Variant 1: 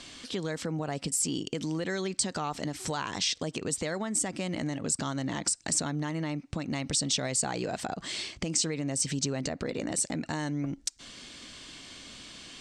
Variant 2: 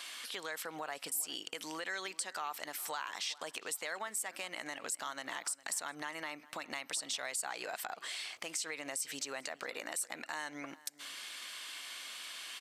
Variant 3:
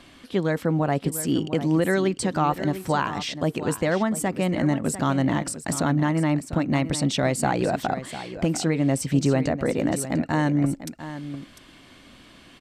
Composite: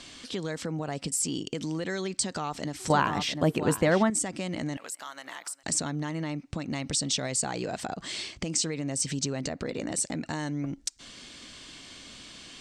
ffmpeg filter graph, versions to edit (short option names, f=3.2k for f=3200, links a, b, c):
-filter_complex "[0:a]asplit=3[a][b][c];[a]atrim=end=2.902[d];[2:a]atrim=start=2.898:end=4.102[e];[b]atrim=start=4.098:end=4.772[f];[1:a]atrim=start=4.768:end=5.632[g];[c]atrim=start=5.628[h];[d][e]acrossfade=d=0.004:c1=hsin:c2=hsin[i];[i][f]acrossfade=d=0.004:c1=hsin:c2=hsin[j];[j][g]acrossfade=d=0.004:c1=hsin:c2=hsin[k];[k][h]acrossfade=d=0.004:c1=hsin:c2=hsin"